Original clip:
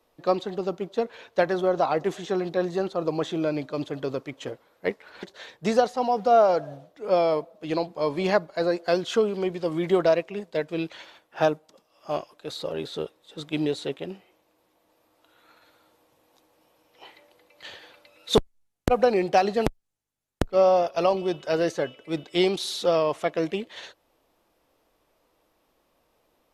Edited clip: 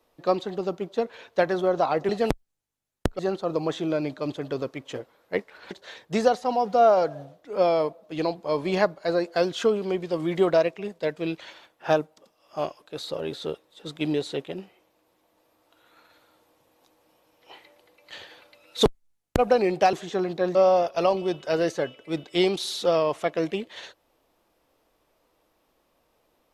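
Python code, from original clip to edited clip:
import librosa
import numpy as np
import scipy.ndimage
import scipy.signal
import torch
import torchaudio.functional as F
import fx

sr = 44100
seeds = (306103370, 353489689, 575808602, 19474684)

y = fx.edit(x, sr, fx.swap(start_s=2.09, length_s=0.62, other_s=19.45, other_length_s=1.1), tone=tone)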